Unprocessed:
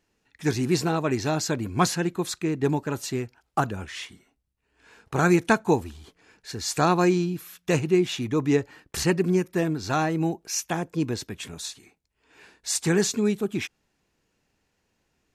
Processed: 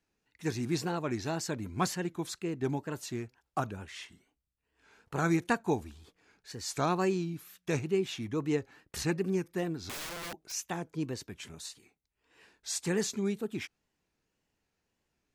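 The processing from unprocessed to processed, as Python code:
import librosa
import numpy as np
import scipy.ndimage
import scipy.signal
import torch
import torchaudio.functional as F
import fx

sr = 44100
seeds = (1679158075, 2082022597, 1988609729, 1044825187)

y = fx.wow_flutter(x, sr, seeds[0], rate_hz=2.1, depth_cents=110.0)
y = fx.overflow_wrap(y, sr, gain_db=26.5, at=(9.89, 10.52))
y = F.gain(torch.from_numpy(y), -8.5).numpy()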